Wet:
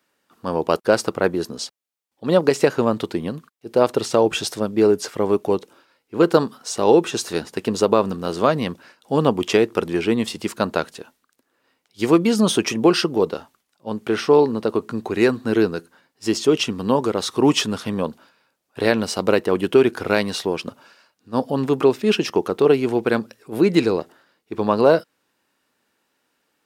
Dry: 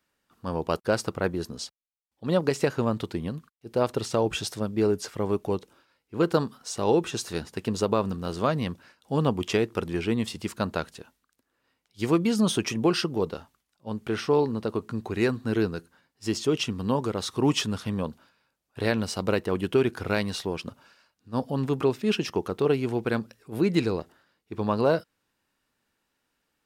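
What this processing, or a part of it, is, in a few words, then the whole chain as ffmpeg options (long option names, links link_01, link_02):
filter by subtraction: -filter_complex "[0:a]asplit=2[link_01][link_02];[link_02]lowpass=370,volume=-1[link_03];[link_01][link_03]amix=inputs=2:normalize=0,volume=6.5dB"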